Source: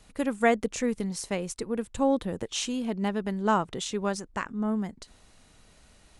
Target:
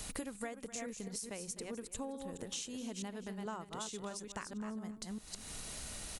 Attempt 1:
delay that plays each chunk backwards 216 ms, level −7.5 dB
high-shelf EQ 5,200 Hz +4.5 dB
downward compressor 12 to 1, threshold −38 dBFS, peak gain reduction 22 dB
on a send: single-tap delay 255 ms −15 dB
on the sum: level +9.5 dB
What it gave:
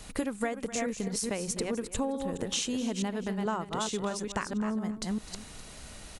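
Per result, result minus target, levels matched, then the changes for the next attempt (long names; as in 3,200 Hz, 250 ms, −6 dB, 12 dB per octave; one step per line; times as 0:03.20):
downward compressor: peak gain reduction −11.5 dB; 8,000 Hz band −4.0 dB
change: downward compressor 12 to 1, threshold −50 dBFS, peak gain reduction 33 dB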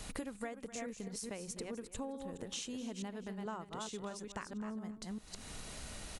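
8,000 Hz band −3.0 dB
change: high-shelf EQ 5,200 Hz +13.5 dB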